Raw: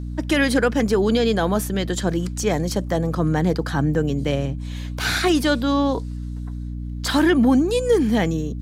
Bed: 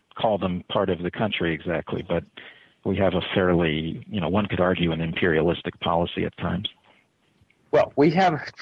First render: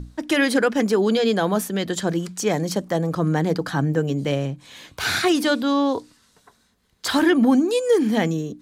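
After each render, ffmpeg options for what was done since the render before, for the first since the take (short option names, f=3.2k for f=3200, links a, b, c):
-af "bandreject=f=60:t=h:w=6,bandreject=f=120:t=h:w=6,bandreject=f=180:t=h:w=6,bandreject=f=240:t=h:w=6,bandreject=f=300:t=h:w=6"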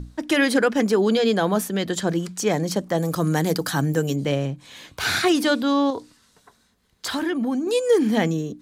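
-filter_complex "[0:a]asettb=1/sr,asplit=3[a][b][c];[a]atrim=end=2.984[d];[b]atrim=start=2.98:end=4.16,asetpts=PTS-STARTPTS,afade=t=in:d=0.004:c=qsin,afade=t=out:st=1.176:d=0.004:c=qsin,aemphasis=mode=production:type=75fm[e];[c]atrim=start=4.156[f];[d][e]acrossfade=d=0.004:c1=hsin:c2=qsin[g];[g][f]acrossfade=d=0.004:c1=qsin:c2=hsin,asettb=1/sr,asplit=3[h][i][j];[h]atrim=end=5.904[k];[i]atrim=start=5.9:end=7.67,asetpts=PTS-STARTPTS,afade=t=in:d=0.004:c=qsin,afade=t=out:st=1.766:d=0.004:c=qsin,acompressor=threshold=-27dB:ratio=2:attack=3.2:release=140:knee=1:detection=peak[l];[j]atrim=start=7.666[m];[k][l]acrossfade=d=0.004:c1=hsin:c2=qsin[n];[n][m]acrossfade=d=0.004:c1=qsin:c2=hsin"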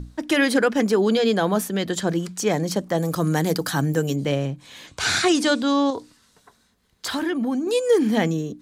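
-filter_complex "[0:a]asettb=1/sr,asplit=3[a][b][c];[a]atrim=end=4.874[d];[b]atrim=start=4.87:end=5.96,asetpts=PTS-STARTPTS,afade=t=in:d=0.004:c=qsin,afade=t=out:st=1.086:d=0.004:c=qsin,lowpass=f=7.8k:t=q:w=2[e];[c]atrim=start=5.956[f];[d][e]acrossfade=d=0.004:c1=hsin:c2=qsin[g];[g][f]acrossfade=d=0.004:c1=qsin:c2=hsin"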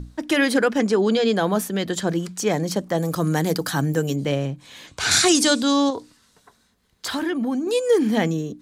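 -filter_complex "[0:a]asettb=1/sr,asplit=3[a][b][c];[a]atrim=end=0.784[d];[b]atrim=start=0.78:end=1.36,asetpts=PTS-STARTPTS,afade=t=in:d=0.004:c=qsin,afade=t=out:st=0.576:d=0.004:c=qsin,lowpass=f=9.6k:w=0.5412,lowpass=f=9.6k:w=1.3066[e];[c]atrim=start=1.356[f];[d][e]acrossfade=d=0.004:c1=hsin:c2=qsin[g];[g][f]acrossfade=d=0.004:c1=qsin:c2=hsin,asettb=1/sr,asplit=3[h][i][j];[h]atrim=end=5.114[k];[i]atrim=start=5.11:end=5.89,asetpts=PTS-STARTPTS,afade=t=in:d=0.004:c=qsin,afade=t=out:st=0.776:d=0.004:c=qsin,bass=f=250:g=3,treble=f=4k:g=11[l];[j]atrim=start=5.886[m];[k][l]acrossfade=d=0.004:c1=hsin:c2=qsin[n];[n][m]acrossfade=d=0.004:c1=qsin:c2=hsin"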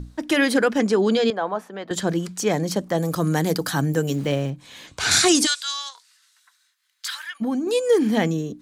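-filter_complex "[0:a]asettb=1/sr,asplit=3[a][b][c];[a]atrim=end=1.304[d];[b]atrim=start=1.3:end=1.91,asetpts=PTS-STARTPTS,afade=t=in:d=0.004:c=qsin,afade=t=out:st=0.606:d=0.004:c=qsin,bandpass=f=910:t=q:w=1.2[e];[c]atrim=start=1.906[f];[d][e]acrossfade=d=0.004:c1=hsin:c2=qsin[g];[g][f]acrossfade=d=0.004:c1=qsin:c2=hsin,asettb=1/sr,asplit=3[h][i][j];[h]atrim=end=4.074[k];[i]atrim=start=4.07:end=4.5,asetpts=PTS-STARTPTS,afade=t=in:d=0.004:c=qsin,afade=t=out:st=0.426:d=0.004:c=qsin,aeval=exprs='val(0)*gte(abs(val(0)),0.0112)':c=same[l];[j]atrim=start=4.496[m];[k][l]acrossfade=d=0.004:c1=hsin:c2=qsin[n];[n][m]acrossfade=d=0.004:c1=qsin:c2=hsin,asplit=3[o][p][q];[o]afade=t=out:st=5.45:d=0.02[r];[p]highpass=f=1.4k:w=0.5412,highpass=f=1.4k:w=1.3066,afade=t=in:st=5.45:d=0.02,afade=t=out:st=7.4:d=0.02[s];[q]afade=t=in:st=7.4:d=0.02[t];[r][s][t]amix=inputs=3:normalize=0"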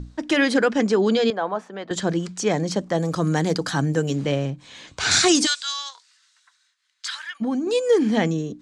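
-af "lowpass=f=8k:w=0.5412,lowpass=f=8k:w=1.3066"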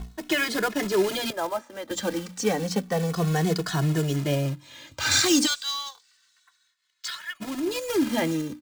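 -filter_complex "[0:a]acrusher=bits=3:mode=log:mix=0:aa=0.000001,asplit=2[a][b];[b]adelay=2.3,afreqshift=-0.3[c];[a][c]amix=inputs=2:normalize=1"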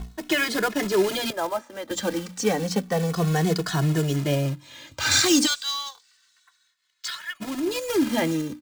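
-af "volume=1.5dB"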